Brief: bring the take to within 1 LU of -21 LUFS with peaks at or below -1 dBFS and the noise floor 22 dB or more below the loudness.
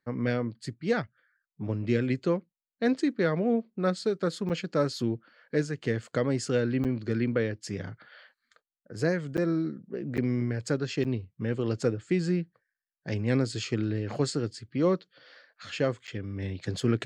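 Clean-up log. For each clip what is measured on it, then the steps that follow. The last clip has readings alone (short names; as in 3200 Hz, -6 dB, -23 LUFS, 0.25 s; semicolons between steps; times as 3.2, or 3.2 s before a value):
dropouts 6; longest dropout 8.1 ms; loudness -30.0 LUFS; peak -14.0 dBFS; loudness target -21.0 LUFS
-> interpolate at 4.49/6.84/9.37/10.17/11.04/16.07, 8.1 ms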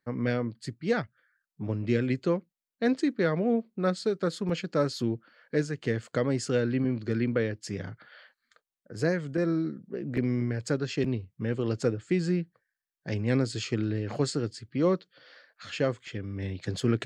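dropouts 0; loudness -30.0 LUFS; peak -14.0 dBFS; loudness target -21.0 LUFS
-> gain +9 dB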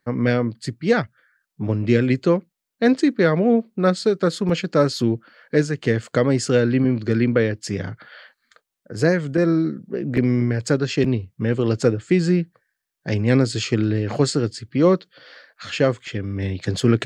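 loudness -21.0 LUFS; peak -5.0 dBFS; noise floor -80 dBFS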